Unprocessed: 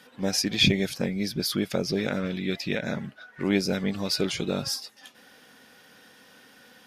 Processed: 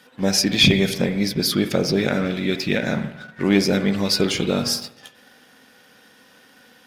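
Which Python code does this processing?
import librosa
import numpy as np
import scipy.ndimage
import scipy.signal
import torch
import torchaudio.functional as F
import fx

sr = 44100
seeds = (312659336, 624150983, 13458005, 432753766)

y = fx.rev_spring(x, sr, rt60_s=1.1, pass_ms=(46, 50), chirp_ms=75, drr_db=9.0)
y = fx.leveller(y, sr, passes=1)
y = y * 10.0 ** (3.0 / 20.0)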